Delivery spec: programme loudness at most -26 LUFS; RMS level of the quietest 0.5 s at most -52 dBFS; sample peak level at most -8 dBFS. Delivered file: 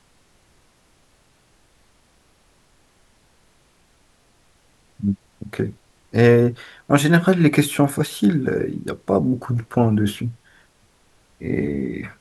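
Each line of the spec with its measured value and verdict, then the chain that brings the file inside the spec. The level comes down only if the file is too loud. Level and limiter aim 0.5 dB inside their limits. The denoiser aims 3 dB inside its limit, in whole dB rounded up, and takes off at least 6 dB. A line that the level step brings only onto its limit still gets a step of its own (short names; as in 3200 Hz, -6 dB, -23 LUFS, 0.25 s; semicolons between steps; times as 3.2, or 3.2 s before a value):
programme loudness -20.0 LUFS: fail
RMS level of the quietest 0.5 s -58 dBFS: OK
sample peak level -1.5 dBFS: fail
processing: gain -6.5 dB; limiter -8.5 dBFS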